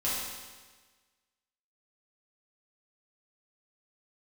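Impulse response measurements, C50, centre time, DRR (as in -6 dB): -1.0 dB, 93 ms, -9.5 dB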